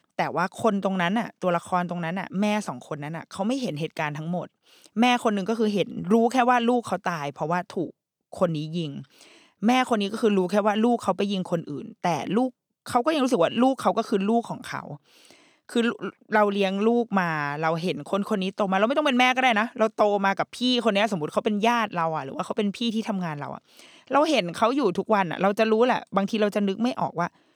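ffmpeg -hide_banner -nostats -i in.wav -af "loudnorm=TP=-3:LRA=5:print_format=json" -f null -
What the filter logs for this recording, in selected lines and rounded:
"input_i" : "-24.5",
"input_tp" : "-7.8",
"input_lra" : "4.1",
"input_thresh" : "-34.8",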